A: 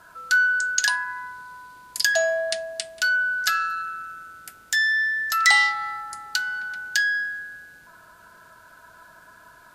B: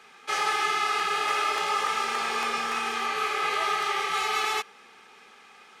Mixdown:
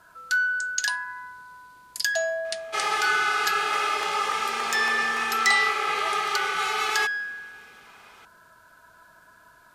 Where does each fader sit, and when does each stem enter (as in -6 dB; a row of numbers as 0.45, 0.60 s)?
-4.5, +0.5 dB; 0.00, 2.45 s